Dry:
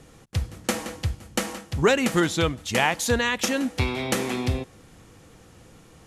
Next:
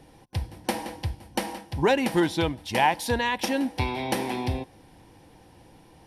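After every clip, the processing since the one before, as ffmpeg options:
ffmpeg -i in.wav -af "superequalizer=6b=1.58:8b=1.41:9b=2.51:10b=0.501:15b=0.316,volume=-3.5dB" out.wav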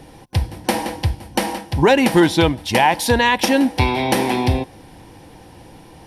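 ffmpeg -i in.wav -af "alimiter=level_in=13dB:limit=-1dB:release=50:level=0:latency=1,volume=-2.5dB" out.wav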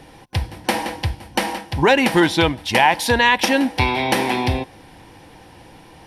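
ffmpeg -i in.wav -af "equalizer=frequency=2000:width=0.45:gain=6,volume=-3.5dB" out.wav

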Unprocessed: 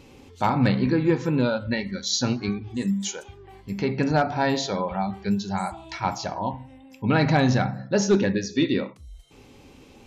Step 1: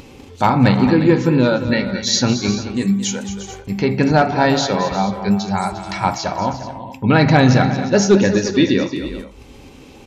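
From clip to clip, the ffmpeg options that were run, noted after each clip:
ffmpeg -i in.wav -filter_complex "[0:a]agate=range=-13dB:threshold=-46dB:ratio=16:detection=peak,acompressor=mode=upward:threshold=-36dB:ratio=2.5,asplit=2[link_01][link_02];[link_02]aecho=0:1:223|353|435:0.251|0.211|0.168[link_03];[link_01][link_03]amix=inputs=2:normalize=0,volume=7.5dB" out.wav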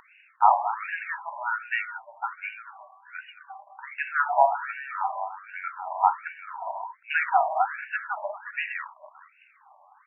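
ffmpeg -i in.wav -af "lowpass=3300,equalizer=frequency=1800:width=1.5:gain=-2.5,afftfilt=real='re*between(b*sr/1024,810*pow(2100/810,0.5+0.5*sin(2*PI*1.3*pts/sr))/1.41,810*pow(2100/810,0.5+0.5*sin(2*PI*1.3*pts/sr))*1.41)':imag='im*between(b*sr/1024,810*pow(2100/810,0.5+0.5*sin(2*PI*1.3*pts/sr))/1.41,810*pow(2100/810,0.5+0.5*sin(2*PI*1.3*pts/sr))*1.41)':win_size=1024:overlap=0.75" out.wav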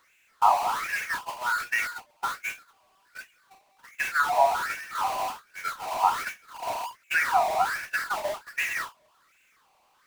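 ffmpeg -i in.wav -af "aeval=exprs='val(0)+0.5*0.0501*sgn(val(0))':channel_layout=same,agate=range=-31dB:threshold=-28dB:ratio=16:detection=peak,equalizer=frequency=830:width=6.3:gain=-3.5,volume=-1.5dB" out.wav

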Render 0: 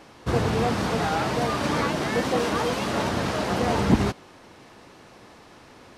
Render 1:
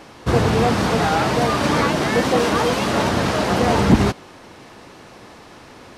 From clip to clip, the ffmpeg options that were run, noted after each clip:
ffmpeg -i in.wav -af "acontrast=40,volume=1dB" out.wav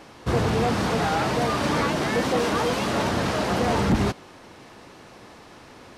ffmpeg -i in.wav -af "asoftclip=type=tanh:threshold=-10dB,volume=-4dB" out.wav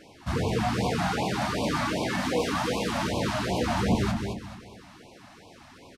ffmpeg -i in.wav -filter_complex "[0:a]flanger=delay=9.6:depth=3:regen=-48:speed=1.5:shape=triangular,asplit=2[link_01][link_02];[link_02]aecho=0:1:217|434|651|868:0.531|0.191|0.0688|0.0248[link_03];[link_01][link_03]amix=inputs=2:normalize=0,afftfilt=real='re*(1-between(b*sr/1024,380*pow(1600/380,0.5+0.5*sin(2*PI*2.6*pts/sr))/1.41,380*pow(1600/380,0.5+0.5*sin(2*PI*2.6*pts/sr))*1.41))':imag='im*(1-between(b*sr/1024,380*pow(1600/380,0.5+0.5*sin(2*PI*2.6*pts/sr))/1.41,380*pow(1600/380,0.5+0.5*sin(2*PI*2.6*pts/sr))*1.41))':win_size=1024:overlap=0.75" out.wav

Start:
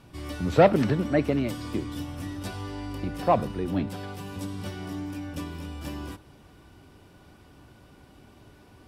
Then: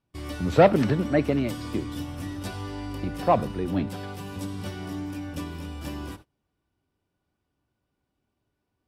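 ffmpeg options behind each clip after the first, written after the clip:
ffmpeg -i in.wav -af "agate=range=-27dB:threshold=-45dB:ratio=16:detection=peak,volume=1dB" out.wav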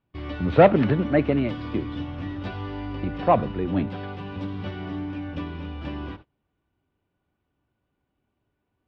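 ffmpeg -i in.wav -af "lowpass=frequency=3400:width=0.5412,lowpass=frequency=3400:width=1.3066,volume=2dB" out.wav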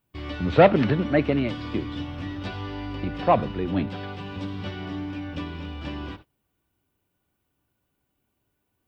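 ffmpeg -i in.wav -af "aemphasis=mode=production:type=75kf,volume=-1dB" out.wav

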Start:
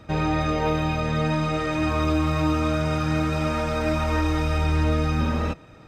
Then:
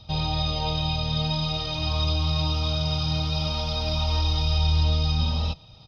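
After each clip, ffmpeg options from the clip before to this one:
ffmpeg -i in.wav -af "firequalizer=gain_entry='entry(120,0);entry(300,-17);entry(820,-3);entry(1700,-22);entry(3200,8);entry(5100,11);entry(7600,-23);entry(11000,-11)':delay=0.05:min_phase=1,volume=1.5dB" out.wav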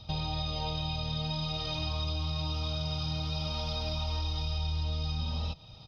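ffmpeg -i in.wav -af "acompressor=threshold=-30dB:ratio=4,volume=-1dB" out.wav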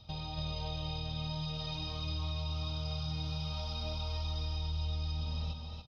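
ffmpeg -i in.wav -af "aecho=1:1:284:0.668,volume=-7dB" out.wav

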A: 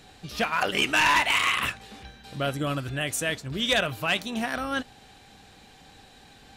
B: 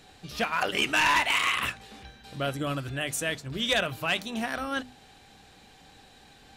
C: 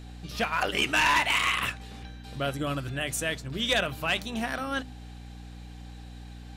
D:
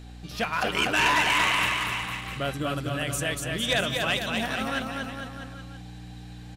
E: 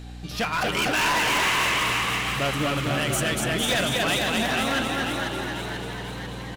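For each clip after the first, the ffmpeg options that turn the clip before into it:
ffmpeg -i in.wav -af "bandreject=frequency=50:width_type=h:width=6,bandreject=frequency=100:width_type=h:width=6,bandreject=frequency=150:width_type=h:width=6,bandreject=frequency=200:width_type=h:width=6,bandreject=frequency=250:width_type=h:width=6,volume=-2dB" out.wav
ffmpeg -i in.wav -af "aeval=exprs='val(0)+0.00794*(sin(2*PI*60*n/s)+sin(2*PI*2*60*n/s)/2+sin(2*PI*3*60*n/s)/3+sin(2*PI*4*60*n/s)/4+sin(2*PI*5*60*n/s)/5)':channel_layout=same" out.wav
ffmpeg -i in.wav -af "aecho=1:1:240|456|650.4|825.4|982.8:0.631|0.398|0.251|0.158|0.1" out.wav
ffmpeg -i in.wav -filter_complex "[0:a]asoftclip=type=hard:threshold=-25.5dB,asplit=9[link_01][link_02][link_03][link_04][link_05][link_06][link_07][link_08][link_09];[link_02]adelay=491,afreqshift=81,volume=-6.5dB[link_10];[link_03]adelay=982,afreqshift=162,volume=-10.9dB[link_11];[link_04]adelay=1473,afreqshift=243,volume=-15.4dB[link_12];[link_05]adelay=1964,afreqshift=324,volume=-19.8dB[link_13];[link_06]adelay=2455,afreqshift=405,volume=-24.2dB[link_14];[link_07]adelay=2946,afreqshift=486,volume=-28.7dB[link_15];[link_08]adelay=3437,afreqshift=567,volume=-33.1dB[link_16];[link_09]adelay=3928,afreqshift=648,volume=-37.6dB[link_17];[link_01][link_10][link_11][link_12][link_13][link_14][link_15][link_16][link_17]amix=inputs=9:normalize=0,volume=4.5dB" out.wav

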